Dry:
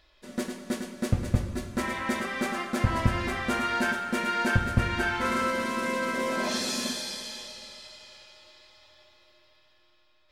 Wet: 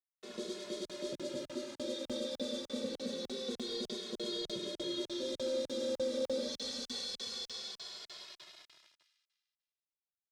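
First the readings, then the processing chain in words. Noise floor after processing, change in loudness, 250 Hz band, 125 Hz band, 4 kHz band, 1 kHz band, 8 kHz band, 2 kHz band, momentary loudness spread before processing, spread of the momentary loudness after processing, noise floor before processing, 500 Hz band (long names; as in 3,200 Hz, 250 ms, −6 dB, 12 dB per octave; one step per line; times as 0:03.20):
below −85 dBFS, −10.5 dB, −10.5 dB, −27.5 dB, −3.5 dB, −25.5 dB, −9.0 dB, −24.0 dB, 12 LU, 9 LU, −63 dBFS, −3.5 dB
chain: high-pass filter 220 Hz 24 dB per octave
brick-wall band-stop 610–3,200 Hz
spectral tilt +1.5 dB per octave
brickwall limiter −27.5 dBFS, peak gain reduction 9.5 dB
bit reduction 8 bits
mid-hump overdrive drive 16 dB, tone 1,900 Hz, clips at −20 dBFS
high-frequency loss of the air 65 metres
delay with a high-pass on its return 99 ms, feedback 64%, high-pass 2,400 Hz, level −5.5 dB
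regular buffer underruns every 0.30 s, samples 2,048, zero, from 0:00.85
barber-pole flanger 2.3 ms −0.26 Hz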